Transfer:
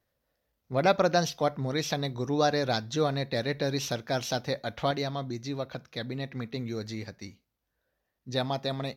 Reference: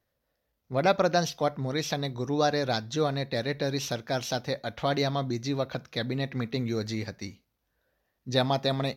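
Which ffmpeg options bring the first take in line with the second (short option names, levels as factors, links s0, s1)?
-af "asetnsamples=n=441:p=0,asendcmd='4.91 volume volume 4.5dB',volume=1"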